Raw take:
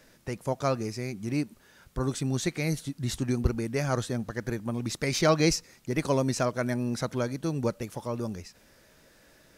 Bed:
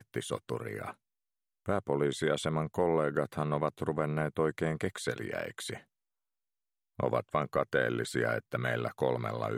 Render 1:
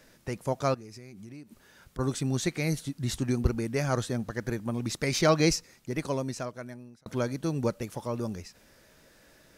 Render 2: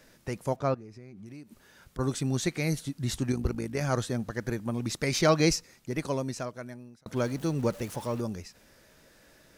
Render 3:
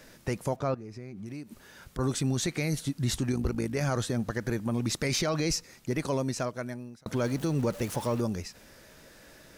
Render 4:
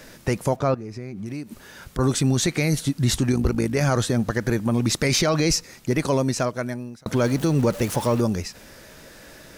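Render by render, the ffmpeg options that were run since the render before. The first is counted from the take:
-filter_complex "[0:a]asettb=1/sr,asplit=3[a][b][c];[a]atrim=end=0.744[d];[b]atrim=start=0.74:end=1.99,asetpts=PTS-STARTPTS,afade=t=in:d=0.004:c=qsin,afade=t=out:st=1.246:d=0.004:c=qsin,acompressor=threshold=-43dB:ratio=6:attack=3.2:release=140:knee=1:detection=peak[e];[c]atrim=start=1.986[f];[d][e]acrossfade=d=0.004:c1=hsin:c2=qsin[g];[g][f]acrossfade=d=0.004:c1=qsin:c2=hsin,asplit=2[h][i];[h]atrim=end=7.06,asetpts=PTS-STARTPTS,afade=t=out:st=5.43:d=1.63[j];[i]atrim=start=7.06,asetpts=PTS-STARTPTS,afade=t=in:d=0.004:c=hsin[k];[j][k]concat=n=2:v=0:a=1"
-filter_complex "[0:a]asettb=1/sr,asplit=3[a][b][c];[a]atrim=end=0.564[d];[b]atrim=start=0.56:end=1.26,asetpts=PTS-STARTPTS,afade=t=in:d=0.004:c=qsin,afade=t=out:st=0.696:d=0.004:c=qsin,lowpass=f=1.5k:p=1[e];[c]atrim=start=1.256[f];[d][e]acrossfade=d=0.004:c1=hsin:c2=qsin[g];[g][f]acrossfade=d=0.004:c1=qsin:c2=hsin,asettb=1/sr,asplit=3[h][i][j];[h]atrim=end=3.324[k];[i]atrim=start=3.32:end=3.82,asetpts=PTS-STARTPTS,afade=t=in:d=0.004:c=qsin,afade=t=out:st=0.496:d=0.004:c=qsin,tremolo=f=53:d=0.571[l];[j]atrim=start=3.816[m];[k][l]acrossfade=d=0.004:c1=hsin:c2=qsin[n];[n][m]acrossfade=d=0.004:c1=qsin:c2=hsin,asettb=1/sr,asplit=3[o][p][q];[o]atrim=end=7.164[r];[p]atrim=start=7.16:end=8.21,asetpts=PTS-STARTPTS,afade=t=in:d=0.004:c=qsin,afade=t=out:st=1.046:d=0.004:c=qsin,aeval=exprs='val(0)+0.5*0.00794*sgn(val(0))':c=same[s];[q]atrim=start=8.206[t];[r][s]acrossfade=d=0.004:c1=hsin:c2=qsin[u];[u][t]acrossfade=d=0.004:c1=qsin:c2=hsin"
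-filter_complex "[0:a]asplit=2[a][b];[b]acompressor=threshold=-34dB:ratio=6,volume=-1.5dB[c];[a][c]amix=inputs=2:normalize=0,alimiter=limit=-19.5dB:level=0:latency=1:release=14"
-af "volume=8dB"

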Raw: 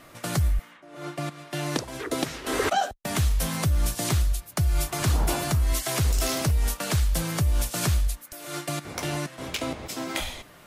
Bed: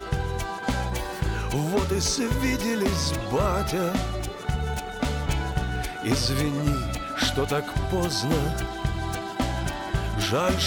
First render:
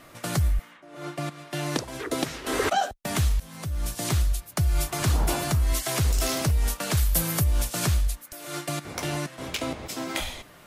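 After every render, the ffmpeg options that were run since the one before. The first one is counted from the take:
-filter_complex "[0:a]asettb=1/sr,asplit=3[a][b][c];[a]atrim=end=6.974[d];[b]atrim=start=6.97:end=7.44,asetpts=PTS-STARTPTS,afade=t=in:d=0.004:c=qsin,afade=t=out:st=0.466:d=0.004:c=qsin,equalizer=f=13k:t=o:w=0.73:g=12[e];[c]atrim=start=7.436[f];[d][e]acrossfade=d=0.004:c1=hsin:c2=qsin[g];[g][f]acrossfade=d=0.004:c1=qsin:c2=hsin,asplit=2[h][i];[h]atrim=end=3.4,asetpts=PTS-STARTPTS,afade=t=out:st=3.396:d=0.004:c=hsin:silence=0.0707946[j];[i]atrim=start=3.4,asetpts=PTS-STARTPTS,afade=t=in:d=0.8:silence=0.0707946[k];[j][k]concat=n=2:v=0:a=1"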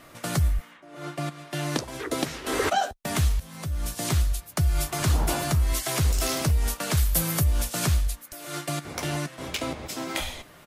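-filter_complex "[0:a]asplit=2[a][b];[b]adelay=13,volume=-14dB[c];[a][c]amix=inputs=2:normalize=0"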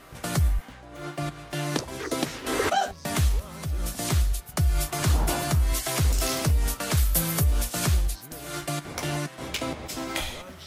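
-filter_complex "[1:a]volume=-20.5dB[a];[0:a][a]amix=inputs=2:normalize=0"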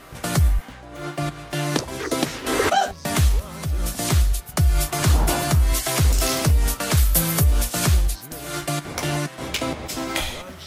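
-af "volume=5dB"

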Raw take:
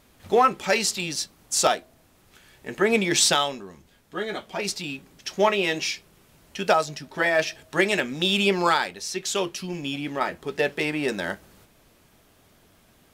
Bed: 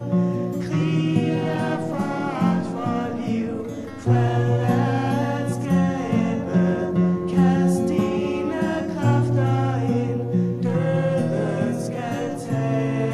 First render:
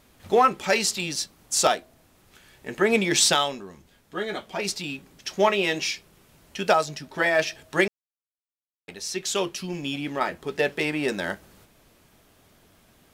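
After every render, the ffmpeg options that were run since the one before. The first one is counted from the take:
-filter_complex "[0:a]asplit=3[a][b][c];[a]atrim=end=7.88,asetpts=PTS-STARTPTS,afade=t=out:st=7.876:d=0.004:c=hsin[d];[b]atrim=start=7.88:end=8.88,asetpts=PTS-STARTPTS,volume=0[e];[c]atrim=start=8.88,asetpts=PTS-STARTPTS,afade=t=in:d=0.004:c=hsin[f];[d][e][f]concat=n=3:v=0:a=1"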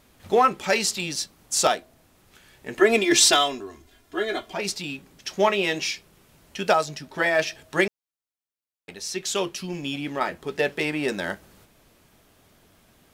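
-filter_complex "[0:a]asettb=1/sr,asplit=3[a][b][c];[a]atrim=end=2.774[d];[b]atrim=start=2.77:end=4.53,asetpts=PTS-STARTPTS,afade=t=in:d=0.004:c=qsin,afade=t=out:st=1.756:d=0.004:c=qsin,aecho=1:1:2.9:0.97,atrim=end_sample=77616[e];[c]atrim=start=4.526[f];[d][e]acrossfade=d=0.004:c1=hsin:c2=qsin[g];[g][f]acrossfade=d=0.004:c1=qsin:c2=hsin"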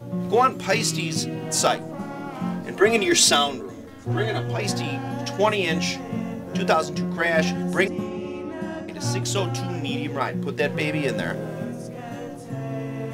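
-filter_complex "[1:a]volume=-8dB[a];[0:a][a]amix=inputs=2:normalize=0"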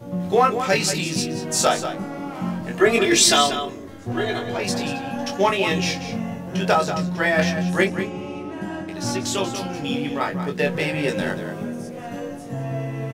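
-filter_complex "[0:a]asplit=2[a][b];[b]adelay=21,volume=-4dB[c];[a][c]amix=inputs=2:normalize=0,asplit=2[d][e];[e]adelay=186.6,volume=-9dB,highshelf=f=4k:g=-4.2[f];[d][f]amix=inputs=2:normalize=0"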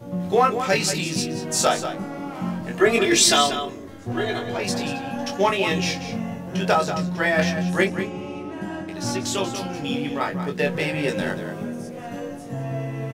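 -af "volume=-1dB"

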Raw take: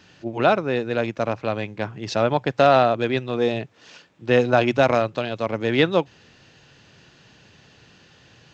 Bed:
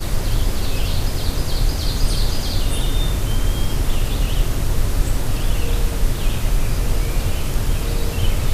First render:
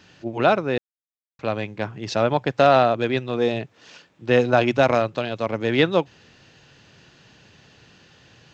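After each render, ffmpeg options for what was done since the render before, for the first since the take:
-filter_complex "[0:a]asplit=3[a][b][c];[a]atrim=end=0.78,asetpts=PTS-STARTPTS,afade=t=out:st=0.776:d=0.004:c=hsin[d];[b]atrim=start=0.78:end=1.39,asetpts=PTS-STARTPTS,volume=0[e];[c]atrim=start=1.39,asetpts=PTS-STARTPTS,afade=t=in:d=0.004:c=hsin[f];[d][e][f]concat=n=3:v=0:a=1"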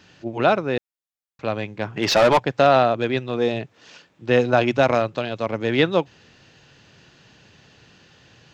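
-filter_complex "[0:a]asplit=3[a][b][c];[a]afade=t=out:st=1.96:d=0.02[d];[b]asplit=2[e][f];[f]highpass=f=720:p=1,volume=25dB,asoftclip=type=tanh:threshold=-7dB[g];[e][g]amix=inputs=2:normalize=0,lowpass=f=3.3k:p=1,volume=-6dB,afade=t=in:st=1.96:d=0.02,afade=t=out:st=2.38:d=0.02[h];[c]afade=t=in:st=2.38:d=0.02[i];[d][h][i]amix=inputs=3:normalize=0"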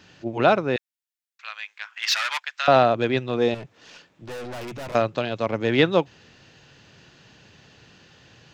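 -filter_complex "[0:a]asettb=1/sr,asplit=3[a][b][c];[a]atrim=end=0.764[d];[b]atrim=start=0.76:end=2.68,asetpts=PTS-STARTPTS,afade=t=in:d=0.004:c=qsin,afade=t=out:st=1.916:d=0.004:c=qsin,highpass=f=1.4k:w=0.5412,highpass=f=1.4k:w=1.3066[e];[c]atrim=start=2.676[f];[d][e]acrossfade=d=0.004:c1=hsin:c2=qsin[g];[g][f]acrossfade=d=0.004:c1=qsin:c2=hsin,asettb=1/sr,asplit=3[h][i][j];[h]atrim=end=3.544[k];[i]atrim=start=3.54:end=4.95,asetpts=PTS-STARTPTS,afade=t=in:d=0.004:c=qsin,afade=t=out:st=1.406:d=0.004:c=qsin,aeval=exprs='(tanh(44.7*val(0)+0.2)-tanh(0.2))/44.7':c=same[l];[j]atrim=start=4.946[m];[k][l]acrossfade=d=0.004:c1=hsin:c2=qsin[n];[n][m]acrossfade=d=0.004:c1=qsin:c2=hsin"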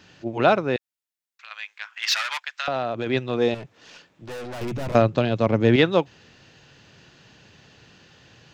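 -filter_complex "[0:a]asettb=1/sr,asplit=3[a][b][c];[a]atrim=end=0.764[d];[b]atrim=start=0.76:end=1.51,asetpts=PTS-STARTPTS,afade=t=in:d=0.004:c=qsin,afade=t=out:st=0.746:d=0.004:c=qsin,acompressor=threshold=-38dB:ratio=6:attack=3.2:release=140:knee=1:detection=peak[e];[c]atrim=start=1.506[f];[d][e]acrossfade=d=0.004:c1=hsin:c2=qsin[g];[g][f]acrossfade=d=0.004:c1=qsin:c2=hsin,asplit=3[h][i][j];[h]afade=t=out:st=2.21:d=0.02[k];[i]acompressor=threshold=-23dB:ratio=4:attack=3.2:release=140:knee=1:detection=peak,afade=t=in:st=2.21:d=0.02,afade=t=out:st=3.06:d=0.02[l];[j]afade=t=in:st=3.06:d=0.02[m];[k][l][m]amix=inputs=3:normalize=0,asettb=1/sr,asplit=3[n][o][p];[n]atrim=end=4.614[q];[o]atrim=start=4.61:end=5.76,asetpts=PTS-STARTPTS,afade=t=in:d=0.004:c=qsin,afade=t=out:st=1.146:d=0.004:c=qsin,lowshelf=f=390:g=10.5[r];[p]atrim=start=5.756[s];[q][r]acrossfade=d=0.004:c1=hsin:c2=qsin[t];[t][s]acrossfade=d=0.004:c1=qsin:c2=hsin"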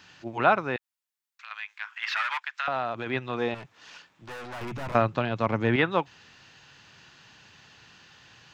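-filter_complex "[0:a]acrossover=split=2700[a][b];[b]acompressor=threshold=-48dB:ratio=4:attack=1:release=60[c];[a][c]amix=inputs=2:normalize=0,lowshelf=f=720:t=q:w=1.5:g=-6.5"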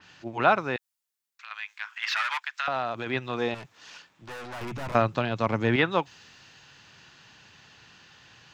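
-af "adynamicequalizer=threshold=0.00631:dfrequency=3900:dqfactor=0.7:tfrequency=3900:tqfactor=0.7:attack=5:release=100:ratio=0.375:range=3.5:mode=boostabove:tftype=highshelf"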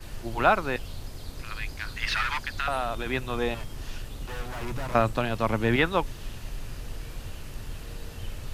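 -filter_complex "[1:a]volume=-18dB[a];[0:a][a]amix=inputs=2:normalize=0"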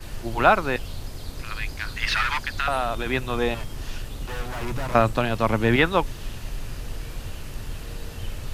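-af "volume=4dB"

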